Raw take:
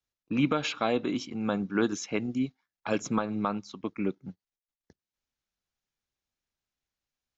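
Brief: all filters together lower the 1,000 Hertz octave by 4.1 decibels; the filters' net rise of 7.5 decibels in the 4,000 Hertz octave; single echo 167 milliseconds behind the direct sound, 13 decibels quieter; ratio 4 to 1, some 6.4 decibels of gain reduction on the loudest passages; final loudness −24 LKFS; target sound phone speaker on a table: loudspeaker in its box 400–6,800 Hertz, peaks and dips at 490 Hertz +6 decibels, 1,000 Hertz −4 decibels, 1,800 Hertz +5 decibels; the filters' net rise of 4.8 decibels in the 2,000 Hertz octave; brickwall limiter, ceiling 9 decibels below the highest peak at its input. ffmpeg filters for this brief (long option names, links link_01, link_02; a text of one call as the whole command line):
ffmpeg -i in.wav -af "equalizer=frequency=1000:width_type=o:gain=-7.5,equalizer=frequency=2000:width_type=o:gain=4,equalizer=frequency=4000:width_type=o:gain=8.5,acompressor=threshold=-28dB:ratio=4,alimiter=level_in=1.5dB:limit=-24dB:level=0:latency=1,volume=-1.5dB,highpass=frequency=400:width=0.5412,highpass=frequency=400:width=1.3066,equalizer=frequency=490:width_type=q:width=4:gain=6,equalizer=frequency=1000:width_type=q:width=4:gain=-4,equalizer=frequency=1800:width_type=q:width=4:gain=5,lowpass=frequency=6800:width=0.5412,lowpass=frequency=6800:width=1.3066,aecho=1:1:167:0.224,volume=15.5dB" out.wav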